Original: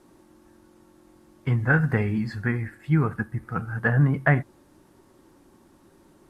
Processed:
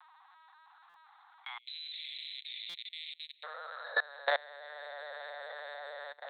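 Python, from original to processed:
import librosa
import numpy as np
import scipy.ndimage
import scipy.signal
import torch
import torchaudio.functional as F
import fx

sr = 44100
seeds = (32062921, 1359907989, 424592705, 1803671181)

y = scipy.signal.sosfilt(scipy.signal.butter(2, 2000.0, 'lowpass', fs=sr, output='sos'), x)
y = fx.room_shoebox(y, sr, seeds[0], volume_m3=130.0, walls='hard', distance_m=0.89)
y = 10.0 ** (-5.5 / 20.0) * np.tanh(y / 10.0 ** (-5.5 / 20.0))
y = np.repeat(scipy.signal.resample_poly(y, 1, 8), 8)[:len(y)]
y = fx.echo_feedback(y, sr, ms=434, feedback_pct=55, wet_db=-8)
y = fx.lpc_vocoder(y, sr, seeds[1], excitation='pitch_kept', order=10)
y = fx.steep_highpass(y, sr, hz=fx.steps((0.0, 780.0), (1.57, 2300.0), (3.43, 500.0)), slope=96)
y = fx.level_steps(y, sr, step_db=24)
y = fx.buffer_glitch(y, sr, at_s=(0.89, 2.69), block=256, repeats=8)
y = fx.band_squash(y, sr, depth_pct=40)
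y = y * librosa.db_to_amplitude(3.0)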